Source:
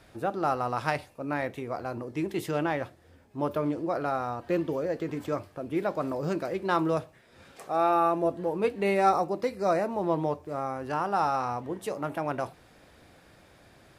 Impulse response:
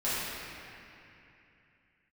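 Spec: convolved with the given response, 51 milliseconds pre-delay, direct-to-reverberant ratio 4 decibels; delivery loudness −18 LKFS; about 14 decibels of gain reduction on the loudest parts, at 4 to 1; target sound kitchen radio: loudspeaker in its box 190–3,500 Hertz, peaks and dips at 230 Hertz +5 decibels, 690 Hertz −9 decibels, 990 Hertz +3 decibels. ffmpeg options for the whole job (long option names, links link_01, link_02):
-filter_complex "[0:a]acompressor=threshold=-36dB:ratio=4,asplit=2[link_01][link_02];[1:a]atrim=start_sample=2205,adelay=51[link_03];[link_02][link_03]afir=irnorm=-1:irlink=0,volume=-14.5dB[link_04];[link_01][link_04]amix=inputs=2:normalize=0,highpass=190,equalizer=frequency=230:width_type=q:width=4:gain=5,equalizer=frequency=690:width_type=q:width=4:gain=-9,equalizer=frequency=990:width_type=q:width=4:gain=3,lowpass=frequency=3500:width=0.5412,lowpass=frequency=3500:width=1.3066,volume=21dB"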